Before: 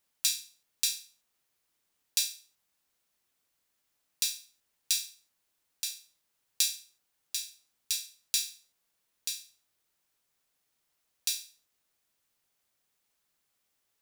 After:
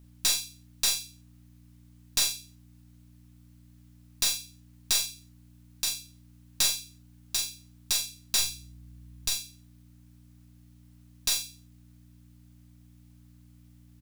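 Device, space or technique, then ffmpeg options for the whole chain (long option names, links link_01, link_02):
valve amplifier with mains hum: -filter_complex "[0:a]aeval=exprs='(tanh(20*val(0)+0.35)-tanh(0.35))/20':channel_layout=same,aeval=exprs='val(0)+0.001*(sin(2*PI*60*n/s)+sin(2*PI*2*60*n/s)/2+sin(2*PI*3*60*n/s)/3+sin(2*PI*4*60*n/s)/4+sin(2*PI*5*60*n/s)/5)':channel_layout=same,asettb=1/sr,asplit=3[link_01][link_02][link_03];[link_01]atrim=end=8.394[link_04];[link_02]atrim=start=8.39:end=9.33,asetpts=PTS-STARTPTS,afade=type=in:duration=0.004:curve=qsin,afade=type=out:start_time=0.936:duration=0.004:curve=qsin,lowshelf=frequency=120:gain=10.5[link_05];[link_03]atrim=start=9.326[link_06];[link_04][link_05]acrossfade=duration=0.004:curve1=hsin:curve2=qsin[link_07];[link_07][link_06]acrossfade=duration=0.004:curve1=qsin:curve2=hsin,asplit=2[link_08][link_09];[link_09]adelay=43,volume=-7dB[link_10];[link_08][link_10]amix=inputs=2:normalize=0,volume=7.5dB"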